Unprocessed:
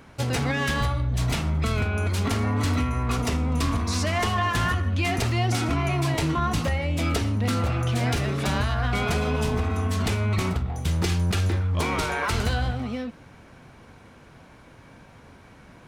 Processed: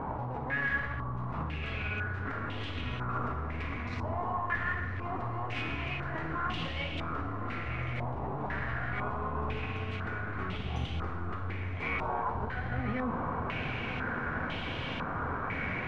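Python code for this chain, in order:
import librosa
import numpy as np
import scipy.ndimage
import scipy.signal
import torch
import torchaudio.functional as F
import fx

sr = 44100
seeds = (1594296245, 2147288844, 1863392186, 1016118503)

y = np.minimum(x, 2.0 * 10.0 ** (-22.0 / 20.0) - x)
y = fx.over_compress(y, sr, threshold_db=-37.0, ratio=-1.0)
y = fx.echo_diffused(y, sr, ms=1121, feedback_pct=69, wet_db=-10.0)
y = fx.rev_gated(y, sr, seeds[0], gate_ms=440, shape='falling', drr_db=4.0)
y = fx.filter_held_lowpass(y, sr, hz=2.0, low_hz=920.0, high_hz=3100.0)
y = y * 10.0 ** (-1.5 / 20.0)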